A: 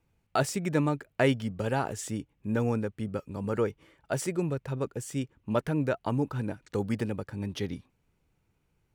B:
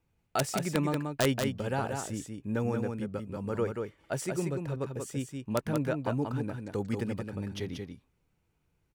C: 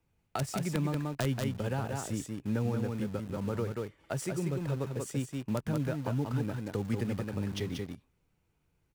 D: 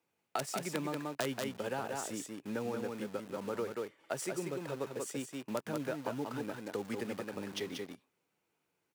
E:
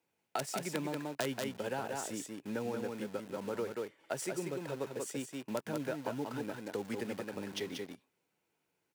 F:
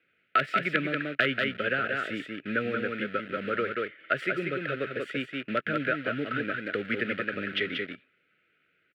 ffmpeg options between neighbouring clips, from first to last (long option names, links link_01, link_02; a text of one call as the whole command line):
ffmpeg -i in.wav -af "aeval=exprs='(mod(5.01*val(0)+1,2)-1)/5.01':channel_layout=same,aecho=1:1:184:0.562,volume=-3dB" out.wav
ffmpeg -i in.wav -filter_complex "[0:a]acrossover=split=190[link_01][link_02];[link_02]acompressor=threshold=-36dB:ratio=5[link_03];[link_01][link_03]amix=inputs=2:normalize=0,asplit=2[link_04][link_05];[link_05]acrusher=bits=6:mix=0:aa=0.000001,volume=-9dB[link_06];[link_04][link_06]amix=inputs=2:normalize=0" out.wav
ffmpeg -i in.wav -af "highpass=320" out.wav
ffmpeg -i in.wav -af "bandreject=frequency=1200:width=11" out.wav
ffmpeg -i in.wav -af "firequalizer=gain_entry='entry(630,0);entry(920,-29);entry(1300,12);entry(2000,12);entry(3200,6);entry(6000,-25)':delay=0.05:min_phase=1,volume=6dB" out.wav